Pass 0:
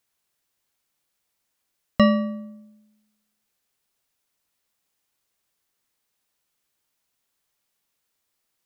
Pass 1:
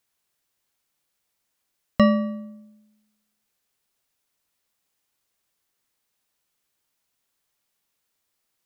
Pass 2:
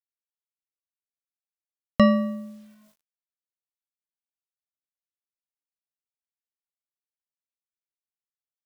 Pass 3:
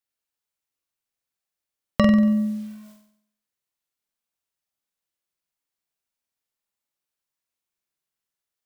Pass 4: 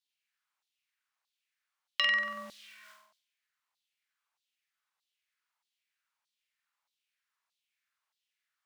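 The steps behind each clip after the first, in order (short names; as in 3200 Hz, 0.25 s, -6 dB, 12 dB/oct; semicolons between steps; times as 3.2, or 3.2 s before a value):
dynamic EQ 3600 Hz, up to -5 dB, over -39 dBFS, Q 1
bit-crush 10-bit
compressor 2.5:1, threshold -27 dBFS, peak gain reduction 10 dB; on a send: flutter echo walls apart 8.1 m, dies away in 0.65 s; on the sum: gain +6.5 dB
overdrive pedal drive 10 dB, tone 2200 Hz, clips at -3.5 dBFS; LFO high-pass saw down 1.6 Hz 840–4100 Hz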